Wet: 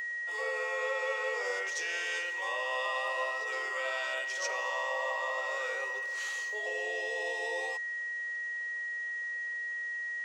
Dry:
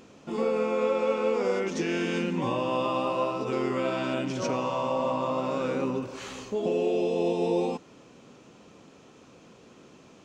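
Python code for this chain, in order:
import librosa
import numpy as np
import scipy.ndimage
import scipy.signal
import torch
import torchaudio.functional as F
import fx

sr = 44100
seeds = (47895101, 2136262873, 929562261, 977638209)

y = scipy.signal.sosfilt(scipy.signal.butter(8, 450.0, 'highpass', fs=sr, output='sos'), x)
y = fx.tilt_eq(y, sr, slope=3.0)
y = y + 10.0 ** (-28.0 / 20.0) * np.sin(2.0 * np.pi * 1900.0 * np.arange(len(y)) / sr)
y = y * librosa.db_to_amplitude(-6.0)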